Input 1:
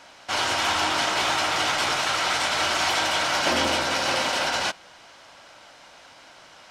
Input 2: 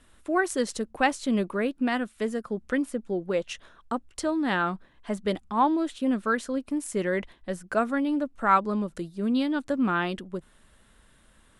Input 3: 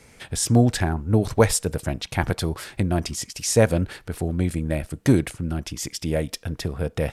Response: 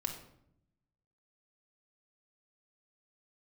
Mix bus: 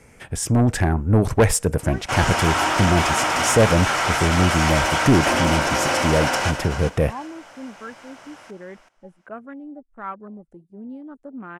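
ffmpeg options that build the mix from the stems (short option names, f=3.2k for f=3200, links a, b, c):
-filter_complex "[0:a]adelay=1800,volume=0dB,asplit=2[a][b];[b]volume=-9dB[c];[1:a]afwtdn=0.0251,adelay=1550,volume=-15.5dB[d];[2:a]highshelf=f=9.8k:g=-7,volume=2dB[e];[c]aecho=0:1:380|760|1140:1|0.18|0.0324[f];[a][d][e][f]amix=inputs=4:normalize=0,equalizer=f=4k:t=o:w=0.76:g=-11,asoftclip=type=tanh:threshold=-13dB,dynaudnorm=f=130:g=11:m=4.5dB"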